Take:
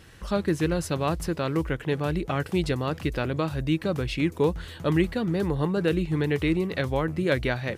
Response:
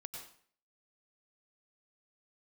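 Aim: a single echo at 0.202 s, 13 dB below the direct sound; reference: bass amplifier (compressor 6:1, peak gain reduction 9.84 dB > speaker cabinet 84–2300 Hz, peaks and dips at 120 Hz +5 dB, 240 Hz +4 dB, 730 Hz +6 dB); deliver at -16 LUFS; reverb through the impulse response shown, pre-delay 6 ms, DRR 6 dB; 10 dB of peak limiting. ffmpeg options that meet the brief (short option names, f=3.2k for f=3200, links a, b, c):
-filter_complex "[0:a]alimiter=limit=-21.5dB:level=0:latency=1,aecho=1:1:202:0.224,asplit=2[a][b];[1:a]atrim=start_sample=2205,adelay=6[c];[b][c]afir=irnorm=-1:irlink=0,volume=-2.5dB[d];[a][d]amix=inputs=2:normalize=0,acompressor=threshold=-32dB:ratio=6,highpass=f=84:w=0.5412,highpass=f=84:w=1.3066,equalizer=f=120:t=q:w=4:g=5,equalizer=f=240:t=q:w=4:g=4,equalizer=f=730:t=q:w=4:g=6,lowpass=f=2.3k:w=0.5412,lowpass=f=2.3k:w=1.3066,volume=19dB"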